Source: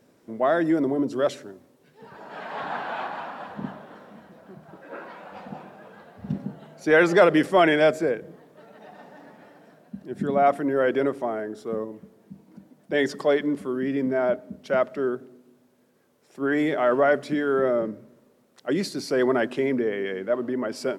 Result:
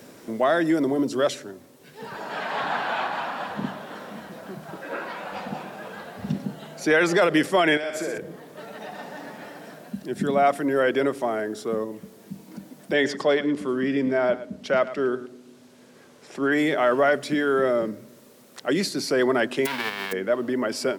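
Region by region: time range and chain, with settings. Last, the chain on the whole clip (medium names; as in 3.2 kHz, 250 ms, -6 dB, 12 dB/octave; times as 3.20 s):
7.77–8.18 s: bass shelf 190 Hz -10.5 dB + compression 12:1, threshold -29 dBFS + flutter echo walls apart 10.5 m, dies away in 0.74 s
12.93–16.52 s: distance through air 51 m + delay 109 ms -15.5 dB
19.65–20.11 s: formants flattened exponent 0.1 + high-pass 490 Hz 6 dB/octave + distance through air 410 m
whole clip: treble shelf 2.2 kHz +9.5 dB; loudness maximiser +8 dB; three bands compressed up and down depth 40%; trim -7.5 dB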